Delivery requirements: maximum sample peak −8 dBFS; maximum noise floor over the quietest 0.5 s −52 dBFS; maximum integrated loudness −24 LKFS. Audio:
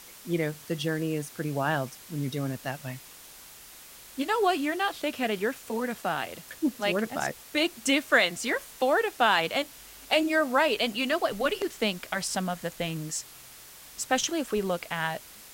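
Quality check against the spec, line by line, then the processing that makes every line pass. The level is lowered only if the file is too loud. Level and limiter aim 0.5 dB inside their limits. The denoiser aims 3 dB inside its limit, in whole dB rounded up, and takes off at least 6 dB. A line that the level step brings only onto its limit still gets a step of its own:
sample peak −10.0 dBFS: in spec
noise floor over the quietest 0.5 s −49 dBFS: out of spec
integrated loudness −28.0 LKFS: in spec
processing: broadband denoise 6 dB, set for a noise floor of −49 dBFS

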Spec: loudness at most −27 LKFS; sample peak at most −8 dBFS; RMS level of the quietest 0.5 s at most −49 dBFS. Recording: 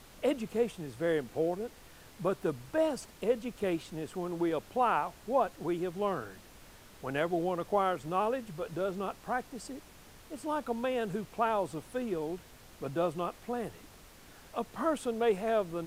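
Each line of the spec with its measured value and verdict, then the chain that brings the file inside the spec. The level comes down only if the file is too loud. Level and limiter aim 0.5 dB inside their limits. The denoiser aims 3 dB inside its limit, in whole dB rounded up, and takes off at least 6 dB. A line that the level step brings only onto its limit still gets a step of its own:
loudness −33.5 LKFS: in spec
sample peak −17.0 dBFS: in spec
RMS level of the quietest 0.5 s −54 dBFS: in spec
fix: no processing needed

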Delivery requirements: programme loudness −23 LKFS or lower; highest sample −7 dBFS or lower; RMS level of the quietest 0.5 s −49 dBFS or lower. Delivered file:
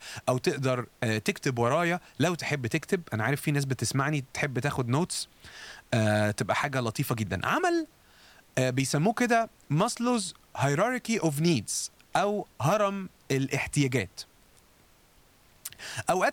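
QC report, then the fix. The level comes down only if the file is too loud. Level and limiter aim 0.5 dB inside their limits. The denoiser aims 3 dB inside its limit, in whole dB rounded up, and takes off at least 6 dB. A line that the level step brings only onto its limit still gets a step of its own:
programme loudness −28.5 LKFS: in spec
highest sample −12.5 dBFS: in spec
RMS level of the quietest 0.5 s −60 dBFS: in spec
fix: no processing needed

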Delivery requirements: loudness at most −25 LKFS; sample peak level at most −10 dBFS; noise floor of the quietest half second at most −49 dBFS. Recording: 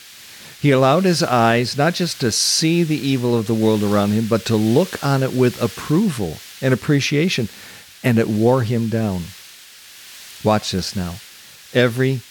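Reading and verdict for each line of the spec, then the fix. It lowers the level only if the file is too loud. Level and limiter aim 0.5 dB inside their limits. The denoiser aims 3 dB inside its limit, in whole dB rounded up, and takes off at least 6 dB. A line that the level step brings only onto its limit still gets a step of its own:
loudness −18.0 LKFS: out of spec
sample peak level −4.0 dBFS: out of spec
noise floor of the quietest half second −42 dBFS: out of spec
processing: level −7.5 dB

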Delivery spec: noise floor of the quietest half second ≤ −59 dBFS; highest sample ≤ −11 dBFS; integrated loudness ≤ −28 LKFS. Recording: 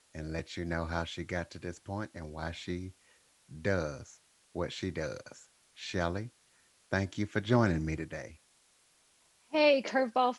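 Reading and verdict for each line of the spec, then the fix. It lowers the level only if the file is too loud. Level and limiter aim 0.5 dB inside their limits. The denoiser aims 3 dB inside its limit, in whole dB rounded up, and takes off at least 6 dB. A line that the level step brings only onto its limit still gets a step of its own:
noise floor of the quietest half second −68 dBFS: in spec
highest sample −12.5 dBFS: in spec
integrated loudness −33.5 LKFS: in spec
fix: no processing needed

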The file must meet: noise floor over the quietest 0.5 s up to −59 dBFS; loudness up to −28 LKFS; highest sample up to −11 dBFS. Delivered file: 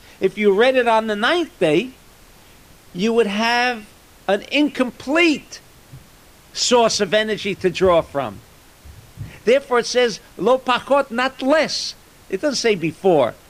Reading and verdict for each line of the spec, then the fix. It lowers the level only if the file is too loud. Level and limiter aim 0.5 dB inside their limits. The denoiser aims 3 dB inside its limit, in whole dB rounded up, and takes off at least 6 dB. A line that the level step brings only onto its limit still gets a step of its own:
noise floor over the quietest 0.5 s −47 dBFS: out of spec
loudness −18.5 LKFS: out of spec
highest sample −5.0 dBFS: out of spec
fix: broadband denoise 6 dB, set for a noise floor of −47 dBFS
level −10 dB

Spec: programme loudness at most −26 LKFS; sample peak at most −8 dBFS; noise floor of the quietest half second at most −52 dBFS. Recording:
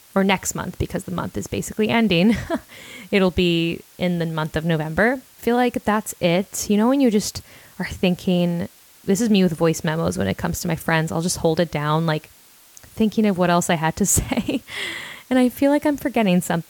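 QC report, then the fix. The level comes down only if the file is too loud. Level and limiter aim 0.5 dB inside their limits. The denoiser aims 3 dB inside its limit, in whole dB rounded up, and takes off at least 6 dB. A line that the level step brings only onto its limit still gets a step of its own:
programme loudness −21.0 LKFS: out of spec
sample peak −5.5 dBFS: out of spec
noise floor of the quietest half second −50 dBFS: out of spec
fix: level −5.5 dB

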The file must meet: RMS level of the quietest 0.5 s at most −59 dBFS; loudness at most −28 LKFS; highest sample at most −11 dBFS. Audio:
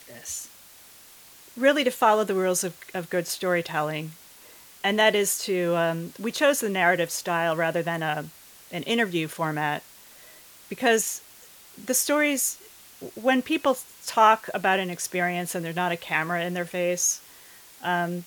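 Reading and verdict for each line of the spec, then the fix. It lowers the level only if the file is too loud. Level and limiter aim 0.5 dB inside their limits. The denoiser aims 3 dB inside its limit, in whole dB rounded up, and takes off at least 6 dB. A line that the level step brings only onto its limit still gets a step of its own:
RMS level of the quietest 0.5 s −50 dBFS: out of spec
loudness −25.0 LKFS: out of spec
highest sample −6.0 dBFS: out of spec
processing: broadband denoise 9 dB, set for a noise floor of −50 dBFS
level −3.5 dB
brickwall limiter −11.5 dBFS

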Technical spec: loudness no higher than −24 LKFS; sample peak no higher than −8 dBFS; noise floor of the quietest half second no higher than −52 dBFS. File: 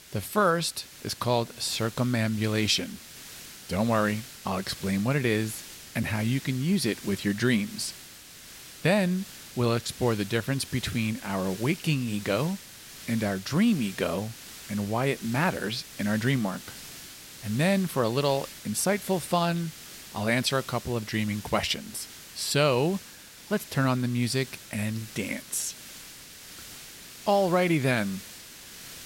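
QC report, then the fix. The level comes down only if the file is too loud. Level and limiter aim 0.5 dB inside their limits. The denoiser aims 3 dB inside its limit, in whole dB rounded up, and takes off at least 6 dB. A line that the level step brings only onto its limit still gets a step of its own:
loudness −28.0 LKFS: in spec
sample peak −10.5 dBFS: in spec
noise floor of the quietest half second −47 dBFS: out of spec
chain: broadband denoise 8 dB, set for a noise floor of −47 dBFS

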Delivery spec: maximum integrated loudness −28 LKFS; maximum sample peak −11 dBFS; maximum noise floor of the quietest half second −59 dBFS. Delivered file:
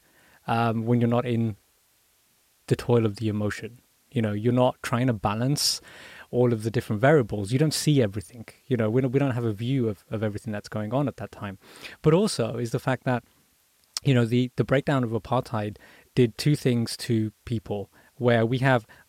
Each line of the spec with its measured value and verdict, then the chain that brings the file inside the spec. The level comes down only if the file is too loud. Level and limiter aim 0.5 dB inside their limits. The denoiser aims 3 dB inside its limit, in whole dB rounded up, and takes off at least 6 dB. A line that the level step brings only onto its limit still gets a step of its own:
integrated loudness −25.5 LKFS: out of spec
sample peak −9.0 dBFS: out of spec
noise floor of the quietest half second −65 dBFS: in spec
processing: level −3 dB

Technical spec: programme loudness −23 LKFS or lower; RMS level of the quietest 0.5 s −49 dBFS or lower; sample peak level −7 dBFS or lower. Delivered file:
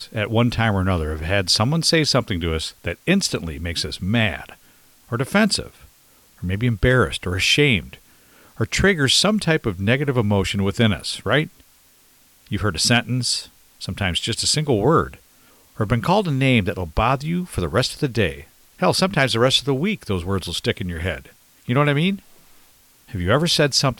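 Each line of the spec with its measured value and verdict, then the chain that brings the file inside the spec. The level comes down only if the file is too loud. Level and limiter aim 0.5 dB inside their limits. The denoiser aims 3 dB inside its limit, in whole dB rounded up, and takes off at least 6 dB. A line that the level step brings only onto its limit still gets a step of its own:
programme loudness −20.0 LKFS: out of spec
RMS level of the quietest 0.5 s −54 dBFS: in spec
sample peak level −5.5 dBFS: out of spec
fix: level −3.5 dB

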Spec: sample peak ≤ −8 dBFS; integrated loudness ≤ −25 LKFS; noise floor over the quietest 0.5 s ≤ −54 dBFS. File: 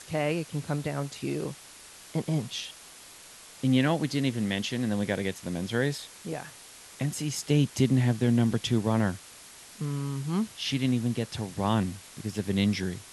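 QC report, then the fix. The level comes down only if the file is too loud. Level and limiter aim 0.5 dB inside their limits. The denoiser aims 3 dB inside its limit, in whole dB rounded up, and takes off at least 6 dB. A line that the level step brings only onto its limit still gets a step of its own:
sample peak −11.0 dBFS: in spec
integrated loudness −29.0 LKFS: in spec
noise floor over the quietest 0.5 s −49 dBFS: out of spec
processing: broadband denoise 8 dB, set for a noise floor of −49 dBFS

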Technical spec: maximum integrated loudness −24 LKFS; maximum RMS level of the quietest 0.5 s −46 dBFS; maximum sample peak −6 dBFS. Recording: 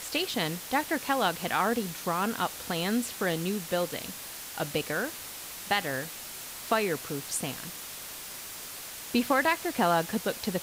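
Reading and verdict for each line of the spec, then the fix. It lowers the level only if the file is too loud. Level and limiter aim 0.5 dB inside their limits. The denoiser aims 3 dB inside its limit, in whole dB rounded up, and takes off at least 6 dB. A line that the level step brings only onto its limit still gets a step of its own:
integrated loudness −30.5 LKFS: in spec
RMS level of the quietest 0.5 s −41 dBFS: out of spec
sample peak −11.5 dBFS: in spec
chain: broadband denoise 8 dB, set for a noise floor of −41 dBFS

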